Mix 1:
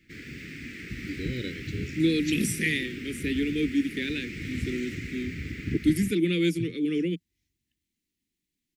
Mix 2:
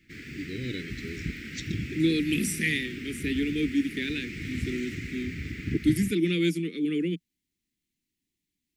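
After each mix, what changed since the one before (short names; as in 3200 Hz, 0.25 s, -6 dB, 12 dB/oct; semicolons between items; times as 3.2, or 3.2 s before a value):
first voice: entry -0.70 s; master: add bell 560 Hz -6 dB 0.54 oct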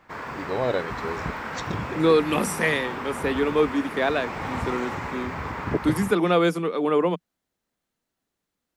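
background: add bell 1200 Hz -5.5 dB 0.32 oct; master: remove elliptic band-stop 330–2100 Hz, stop band 60 dB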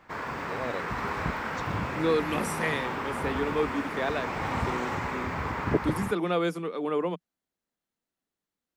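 first voice -10.0 dB; second voice -7.0 dB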